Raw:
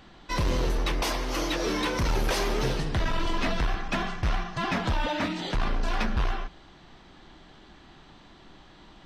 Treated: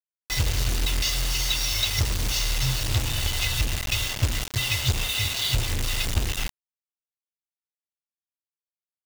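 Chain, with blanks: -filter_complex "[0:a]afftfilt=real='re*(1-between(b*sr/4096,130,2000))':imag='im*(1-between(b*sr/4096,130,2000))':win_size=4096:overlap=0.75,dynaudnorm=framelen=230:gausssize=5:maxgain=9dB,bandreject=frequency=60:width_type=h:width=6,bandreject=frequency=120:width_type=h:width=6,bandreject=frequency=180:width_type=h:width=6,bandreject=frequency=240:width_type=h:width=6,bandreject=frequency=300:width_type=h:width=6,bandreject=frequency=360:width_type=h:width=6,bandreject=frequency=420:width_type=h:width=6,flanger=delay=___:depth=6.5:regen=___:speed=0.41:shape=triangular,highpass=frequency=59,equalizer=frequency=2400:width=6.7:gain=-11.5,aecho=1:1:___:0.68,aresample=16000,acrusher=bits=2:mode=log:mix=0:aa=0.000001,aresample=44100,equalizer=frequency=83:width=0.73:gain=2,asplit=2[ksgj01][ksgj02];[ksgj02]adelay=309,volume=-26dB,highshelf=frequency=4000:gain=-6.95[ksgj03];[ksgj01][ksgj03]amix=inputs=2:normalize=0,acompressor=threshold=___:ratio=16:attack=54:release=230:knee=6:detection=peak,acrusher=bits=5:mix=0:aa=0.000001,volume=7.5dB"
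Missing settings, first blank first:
1.1, 84, 1.1, -31dB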